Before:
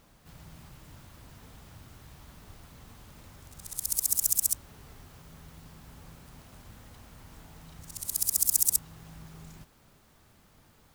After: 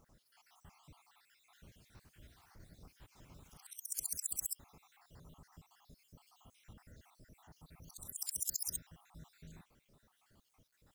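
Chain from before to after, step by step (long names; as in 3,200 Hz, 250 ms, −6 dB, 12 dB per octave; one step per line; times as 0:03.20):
time-frequency cells dropped at random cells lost 70%
high-shelf EQ 9,500 Hz −4.5 dB
bit reduction 12 bits
0:01.39–0:03.66: delay with pitch and tempo change per echo 162 ms, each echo +2 semitones, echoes 3, each echo −6 dB
level −5.5 dB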